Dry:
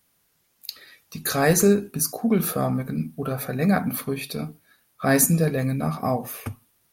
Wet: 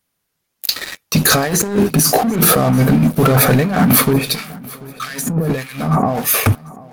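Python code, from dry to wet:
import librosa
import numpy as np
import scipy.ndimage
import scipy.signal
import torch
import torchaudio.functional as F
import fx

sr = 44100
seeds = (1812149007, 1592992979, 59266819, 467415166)

y = fx.high_shelf(x, sr, hz=10000.0, db=-4.0)
y = fx.over_compress(y, sr, threshold_db=-30.0, ratio=-1.0)
y = fx.leveller(y, sr, passes=5)
y = fx.harmonic_tremolo(y, sr, hz=1.6, depth_pct=100, crossover_hz=1400.0, at=(4.13, 6.34))
y = fx.echo_feedback(y, sr, ms=738, feedback_pct=40, wet_db=-21.0)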